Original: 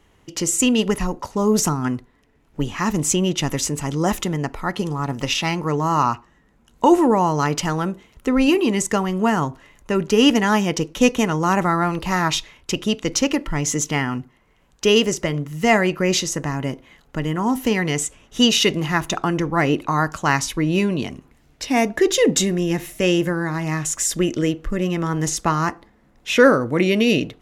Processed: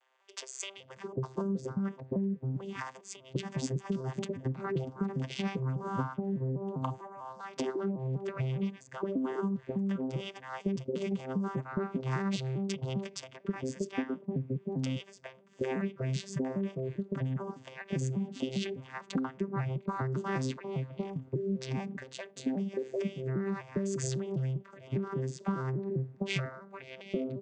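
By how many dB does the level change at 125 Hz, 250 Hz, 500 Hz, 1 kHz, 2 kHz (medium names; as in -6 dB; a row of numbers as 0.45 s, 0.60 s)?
-9.0 dB, -14.5 dB, -15.0 dB, -19.5 dB, -20.0 dB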